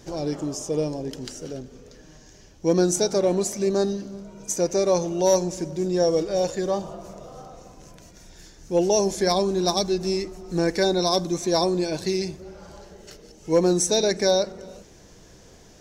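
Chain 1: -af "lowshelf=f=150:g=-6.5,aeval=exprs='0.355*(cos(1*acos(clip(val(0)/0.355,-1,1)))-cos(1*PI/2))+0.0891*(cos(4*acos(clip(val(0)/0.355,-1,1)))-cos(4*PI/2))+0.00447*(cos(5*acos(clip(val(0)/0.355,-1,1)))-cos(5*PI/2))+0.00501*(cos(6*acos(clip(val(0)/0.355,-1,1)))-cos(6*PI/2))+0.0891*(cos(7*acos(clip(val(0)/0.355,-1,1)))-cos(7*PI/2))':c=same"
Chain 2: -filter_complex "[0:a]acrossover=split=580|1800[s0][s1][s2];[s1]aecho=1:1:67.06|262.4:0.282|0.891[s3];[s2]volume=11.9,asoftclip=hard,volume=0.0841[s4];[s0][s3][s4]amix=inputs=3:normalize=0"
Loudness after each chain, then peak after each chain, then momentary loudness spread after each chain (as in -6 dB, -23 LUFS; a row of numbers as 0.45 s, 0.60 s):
-25.0 LUFS, -23.5 LUFS; -6.0 dBFS, -8.0 dBFS; 18 LU, 16 LU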